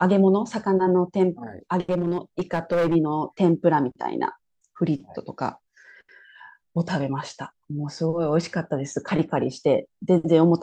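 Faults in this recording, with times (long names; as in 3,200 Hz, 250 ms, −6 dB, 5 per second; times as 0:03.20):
0:01.90–0:02.96: clipping −18 dBFS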